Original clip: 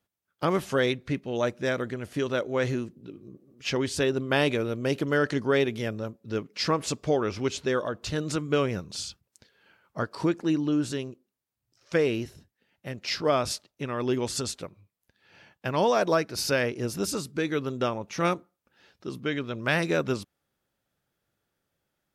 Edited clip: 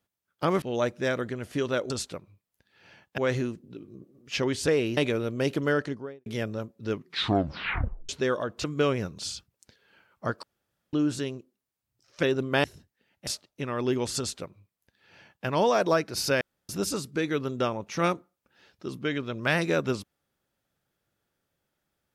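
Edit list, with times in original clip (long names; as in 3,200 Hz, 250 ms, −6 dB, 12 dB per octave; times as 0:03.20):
0:00.62–0:01.23: remove
0:04.01–0:04.42: swap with 0:11.96–0:12.25
0:05.06–0:05.71: fade out and dull
0:06.37: tape stop 1.17 s
0:08.09–0:08.37: remove
0:10.16–0:10.66: fill with room tone
0:12.88–0:13.48: remove
0:14.39–0:15.67: duplicate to 0:02.51
0:16.62–0:16.90: fill with room tone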